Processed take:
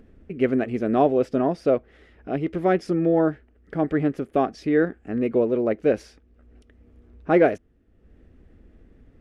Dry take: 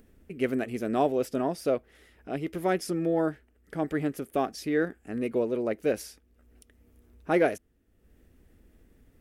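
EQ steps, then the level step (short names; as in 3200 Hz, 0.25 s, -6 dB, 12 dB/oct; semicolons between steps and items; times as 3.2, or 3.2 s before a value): tape spacing loss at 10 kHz 23 dB; notch 920 Hz, Q 22; +7.5 dB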